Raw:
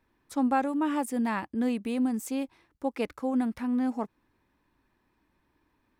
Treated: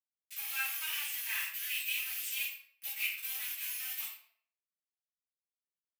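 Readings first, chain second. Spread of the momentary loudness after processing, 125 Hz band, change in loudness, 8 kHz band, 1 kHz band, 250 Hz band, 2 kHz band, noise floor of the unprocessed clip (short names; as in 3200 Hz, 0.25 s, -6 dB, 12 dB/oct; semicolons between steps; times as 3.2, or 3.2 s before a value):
8 LU, n/a, -5.5 dB, +6.5 dB, -21.0 dB, under -40 dB, +4.0 dB, -74 dBFS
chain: whine 12000 Hz -33 dBFS; sample gate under -30.5 dBFS; ladder high-pass 2200 Hz, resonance 55%; shoebox room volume 100 m³, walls mixed, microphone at 2.8 m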